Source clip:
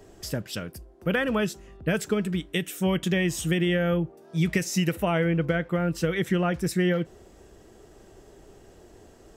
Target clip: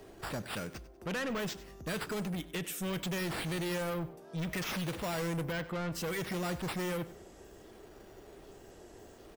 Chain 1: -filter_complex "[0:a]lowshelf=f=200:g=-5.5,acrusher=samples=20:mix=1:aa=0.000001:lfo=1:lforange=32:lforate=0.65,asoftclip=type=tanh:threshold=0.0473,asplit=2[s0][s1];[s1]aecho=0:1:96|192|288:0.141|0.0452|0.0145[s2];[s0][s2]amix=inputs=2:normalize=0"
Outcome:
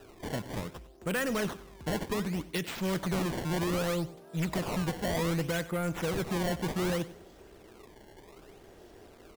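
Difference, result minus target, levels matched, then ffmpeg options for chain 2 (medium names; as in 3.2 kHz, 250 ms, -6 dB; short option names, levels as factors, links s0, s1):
decimation with a swept rate: distortion +9 dB; saturation: distortion -5 dB
-filter_complex "[0:a]lowshelf=f=200:g=-5.5,acrusher=samples=4:mix=1:aa=0.000001:lfo=1:lforange=6.4:lforate=0.65,asoftclip=type=tanh:threshold=0.0224,asplit=2[s0][s1];[s1]aecho=0:1:96|192|288:0.141|0.0452|0.0145[s2];[s0][s2]amix=inputs=2:normalize=0"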